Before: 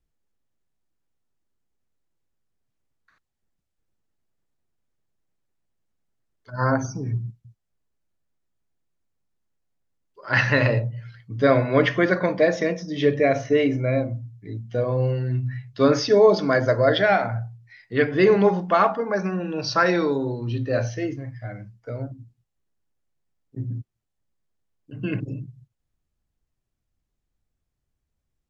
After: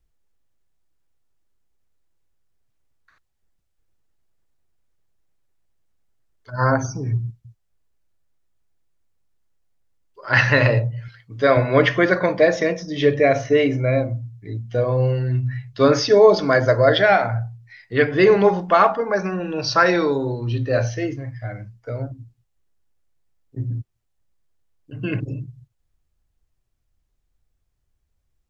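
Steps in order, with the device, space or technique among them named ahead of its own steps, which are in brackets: low shelf boost with a cut just above (bass shelf 76 Hz +5.5 dB; peaking EQ 210 Hz -5.5 dB 1.1 oct); 11.08–11.57 s: bass shelf 220 Hz -10.5 dB; trim +4 dB

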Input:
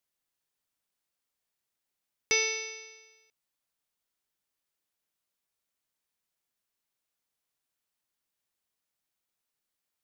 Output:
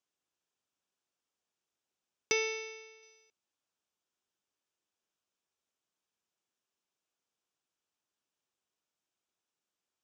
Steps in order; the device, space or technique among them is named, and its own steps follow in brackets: car door speaker (cabinet simulation 83–7400 Hz, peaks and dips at 130 Hz -4 dB, 370 Hz +4 dB, 2 kHz -7 dB, 4.3 kHz -6 dB); 2.32–3.03 s: distance through air 140 m

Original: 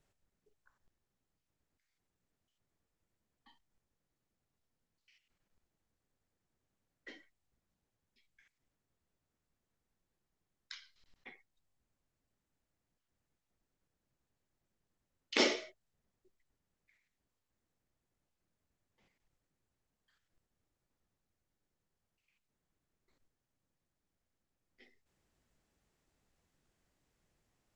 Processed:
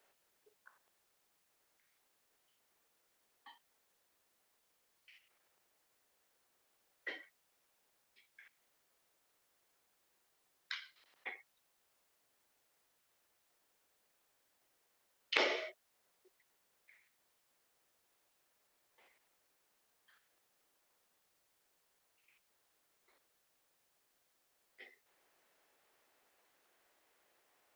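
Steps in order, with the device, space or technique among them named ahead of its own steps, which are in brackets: high-pass 330 Hz; baby monitor (band-pass 440–3100 Hz; compression, threshold -39 dBFS, peak gain reduction 10.5 dB; white noise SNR 26 dB); trim +9.5 dB

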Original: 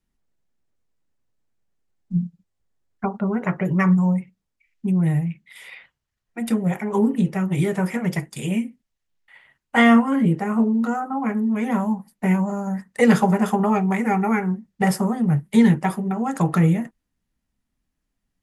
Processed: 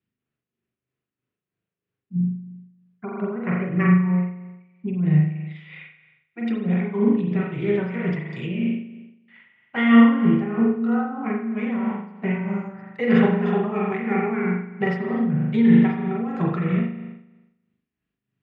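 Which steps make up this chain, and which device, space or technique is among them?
combo amplifier with spring reverb and tremolo (spring tank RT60 1 s, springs 39 ms, chirp 55 ms, DRR -2.5 dB; tremolo 3.1 Hz, depth 50%; cabinet simulation 110–3700 Hz, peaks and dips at 120 Hz +10 dB, 390 Hz +6 dB, 560 Hz -4 dB, 860 Hz -8 dB, 2.6 kHz +4 dB); trim -4 dB

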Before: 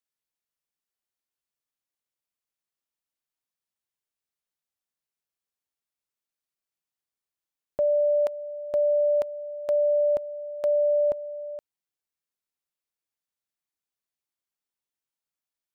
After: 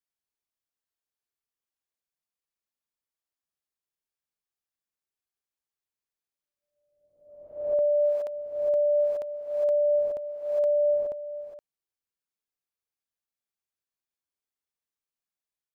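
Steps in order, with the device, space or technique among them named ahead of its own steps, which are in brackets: reverse reverb (reverse; reverberation RT60 0.95 s, pre-delay 50 ms, DRR -3.5 dB; reverse); trim -8.5 dB

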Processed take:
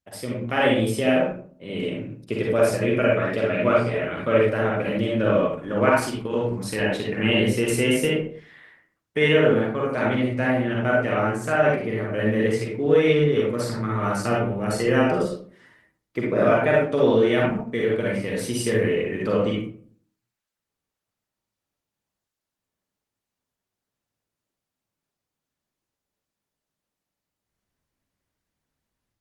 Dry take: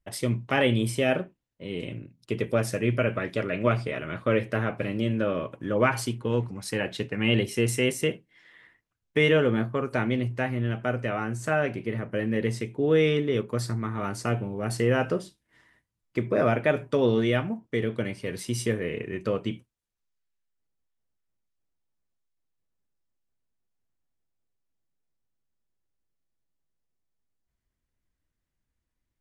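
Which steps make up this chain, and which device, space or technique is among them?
9.59–10.07 s: hum notches 50/100/150/200/250/300/350/400/450 Hz; far-field microphone of a smart speaker (reverberation RT60 0.50 s, pre-delay 40 ms, DRR -3.5 dB; high-pass 150 Hz 6 dB/octave; level rider gain up to 7 dB; trim -4 dB; Opus 20 kbps 48 kHz)

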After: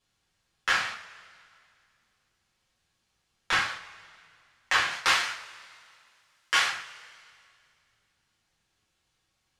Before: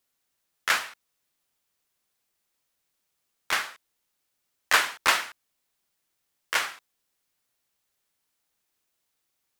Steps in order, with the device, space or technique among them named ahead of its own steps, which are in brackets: jukebox (low-pass 6 kHz 12 dB/octave; resonant low shelf 190 Hz +9 dB, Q 1.5; compression 5:1, threshold -28 dBFS, peak gain reduction 11.5 dB); 4.91–6.69 s: tilt EQ +2 dB/octave; two-slope reverb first 0.33 s, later 2.3 s, from -22 dB, DRR -6 dB

